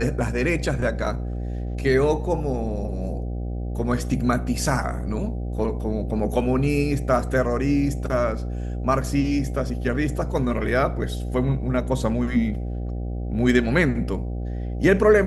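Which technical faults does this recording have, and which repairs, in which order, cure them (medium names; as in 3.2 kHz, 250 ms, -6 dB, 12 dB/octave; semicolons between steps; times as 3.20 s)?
buzz 60 Hz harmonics 13 -28 dBFS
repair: de-hum 60 Hz, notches 13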